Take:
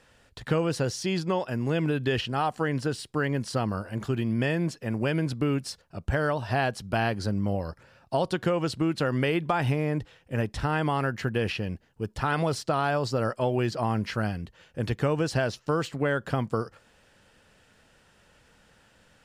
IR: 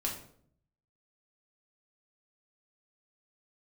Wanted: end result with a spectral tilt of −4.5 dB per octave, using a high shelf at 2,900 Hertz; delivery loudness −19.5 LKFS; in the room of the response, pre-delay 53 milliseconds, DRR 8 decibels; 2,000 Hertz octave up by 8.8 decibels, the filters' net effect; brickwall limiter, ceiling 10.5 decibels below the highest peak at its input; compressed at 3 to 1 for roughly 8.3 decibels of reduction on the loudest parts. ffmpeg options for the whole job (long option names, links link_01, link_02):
-filter_complex "[0:a]equalizer=frequency=2000:width_type=o:gain=8.5,highshelf=frequency=2900:gain=9,acompressor=threshold=-29dB:ratio=3,alimiter=limit=-24dB:level=0:latency=1,asplit=2[link_01][link_02];[1:a]atrim=start_sample=2205,adelay=53[link_03];[link_02][link_03]afir=irnorm=-1:irlink=0,volume=-11dB[link_04];[link_01][link_04]amix=inputs=2:normalize=0,volume=14dB"